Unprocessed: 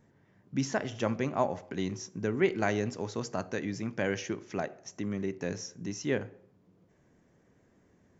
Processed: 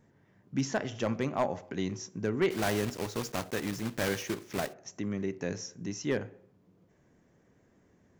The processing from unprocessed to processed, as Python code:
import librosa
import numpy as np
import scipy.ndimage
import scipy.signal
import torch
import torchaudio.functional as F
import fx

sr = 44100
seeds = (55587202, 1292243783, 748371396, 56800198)

y = fx.block_float(x, sr, bits=3, at=(2.5, 4.72), fade=0.02)
y = np.clip(y, -10.0 ** (-20.5 / 20.0), 10.0 ** (-20.5 / 20.0))